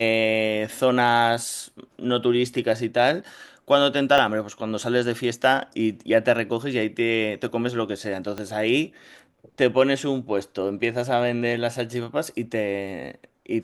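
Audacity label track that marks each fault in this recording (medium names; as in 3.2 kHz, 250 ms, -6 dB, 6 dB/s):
4.180000	4.180000	dropout 2.3 ms
8.380000	8.380000	pop -17 dBFS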